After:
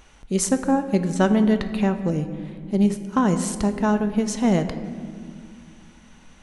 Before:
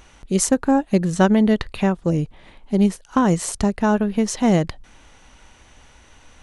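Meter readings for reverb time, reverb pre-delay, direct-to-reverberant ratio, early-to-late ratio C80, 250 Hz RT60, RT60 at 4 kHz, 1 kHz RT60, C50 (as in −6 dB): 2.1 s, 4 ms, 8.0 dB, 11.5 dB, 3.4 s, 1.2 s, 1.7 s, 10.5 dB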